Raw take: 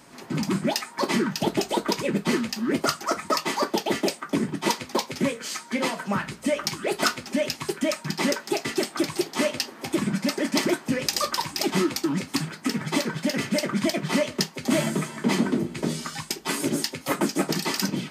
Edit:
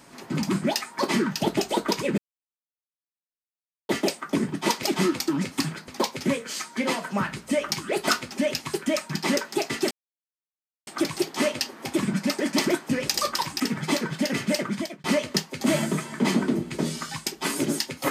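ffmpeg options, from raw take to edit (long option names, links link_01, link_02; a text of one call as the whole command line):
ffmpeg -i in.wav -filter_complex "[0:a]asplit=8[link_01][link_02][link_03][link_04][link_05][link_06][link_07][link_08];[link_01]atrim=end=2.18,asetpts=PTS-STARTPTS,afade=type=out:start_time=2.176:duration=0.004:curve=hsin[link_09];[link_02]atrim=start=2.18:end=3.89,asetpts=PTS-STARTPTS,volume=0[link_10];[link_03]atrim=start=3.89:end=4.832,asetpts=PTS-STARTPTS,afade=type=in:duration=0.004:curve=hsin[link_11];[link_04]atrim=start=11.588:end=12.642[link_12];[link_05]atrim=start=4.828:end=8.86,asetpts=PTS-STARTPTS,afade=type=out:start_time=4.028:duration=0.004:curve=hsin,apad=pad_dur=0.96[link_13];[link_06]atrim=start=8.86:end=11.592,asetpts=PTS-STARTPTS,afade=type=in:duration=0.004:curve=hsin[link_14];[link_07]atrim=start=12.638:end=14.08,asetpts=PTS-STARTPTS,afade=type=out:start_time=0.982:duration=0.46[link_15];[link_08]atrim=start=14.08,asetpts=PTS-STARTPTS,afade=type=in:duration=0.004:curve=hsin[link_16];[link_09][link_10][link_11]concat=n=3:v=0:a=1[link_17];[link_17][link_12]acrossfade=duration=0.004:curve1=hsin:curve2=hsin[link_18];[link_13][link_14]concat=n=2:v=0:a=1[link_19];[link_18][link_19]acrossfade=duration=0.004:curve1=hsin:curve2=hsin[link_20];[link_15][link_16]concat=n=2:v=0:a=1[link_21];[link_20][link_21]acrossfade=duration=0.004:curve1=hsin:curve2=hsin" out.wav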